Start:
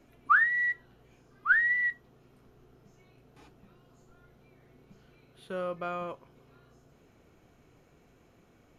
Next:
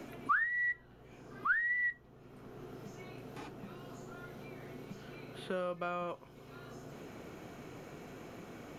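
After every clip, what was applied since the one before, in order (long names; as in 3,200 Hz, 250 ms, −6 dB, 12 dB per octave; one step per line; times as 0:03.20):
multiband upward and downward compressor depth 70%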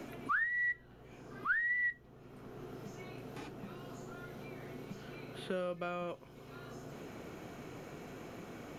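dynamic equaliser 1,000 Hz, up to −7 dB, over −53 dBFS, Q 1.5
level +1 dB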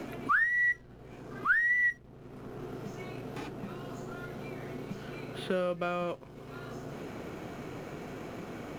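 slack as between gear wheels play −58 dBFS
level +6.5 dB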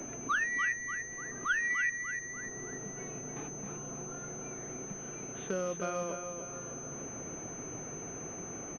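repeating echo 295 ms, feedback 49%, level −7 dB
switching amplifier with a slow clock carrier 6,200 Hz
level −4 dB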